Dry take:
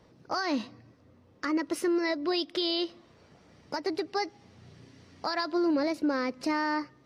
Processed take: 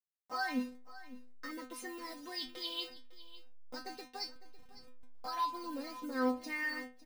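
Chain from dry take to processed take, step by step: send-on-delta sampling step -42 dBFS; inharmonic resonator 250 Hz, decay 0.33 s, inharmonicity 0.002; delay 554 ms -17 dB; trim +6 dB

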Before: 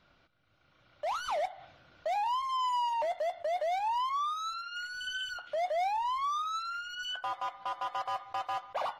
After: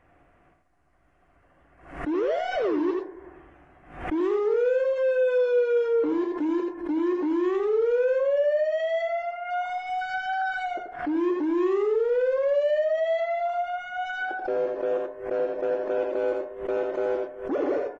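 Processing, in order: doubling 42 ms -5 dB; speed mistake 15 ips tape played at 7.5 ips; dynamic bell 630 Hz, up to +6 dB, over -43 dBFS, Q 0.77; in parallel at +0.5 dB: peak limiter -28.5 dBFS, peak gain reduction 11.5 dB; on the sum: swell ahead of each attack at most 100 dB/s; trim -1 dB

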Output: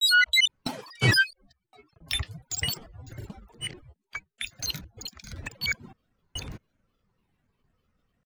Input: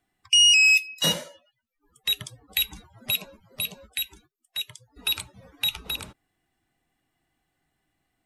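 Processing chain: slices played last to first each 219 ms, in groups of 3; granulator, spray 33 ms, pitch spread up and down by 12 st; tone controls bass +9 dB, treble -7 dB

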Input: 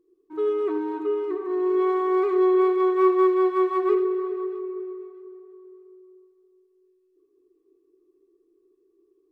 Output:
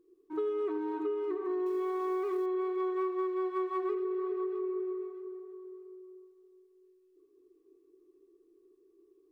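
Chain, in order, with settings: 1.66–2.46 s: companding laws mixed up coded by mu; compression 6:1, threshold -31 dBFS, peak gain reduction 16 dB

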